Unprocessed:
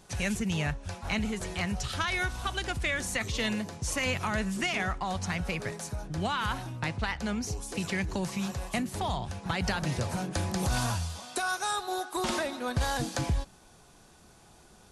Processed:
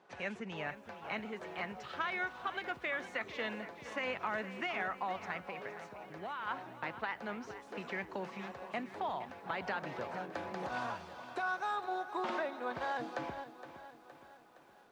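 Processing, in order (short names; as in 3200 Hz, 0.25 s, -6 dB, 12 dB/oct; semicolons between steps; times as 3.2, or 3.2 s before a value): 5.37–6.47 compressor, threshold -32 dBFS, peak gain reduction 6.5 dB; BPF 370–2000 Hz; lo-fi delay 0.466 s, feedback 55%, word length 10-bit, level -12.5 dB; gain -3.5 dB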